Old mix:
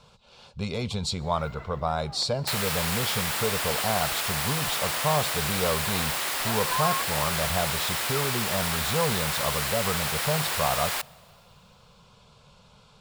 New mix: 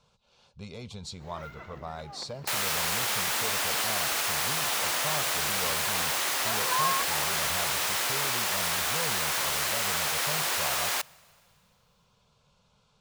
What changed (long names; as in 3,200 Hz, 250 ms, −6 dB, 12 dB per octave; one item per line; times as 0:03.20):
speech −11.5 dB
master: add parametric band 6,200 Hz +5 dB 0.28 octaves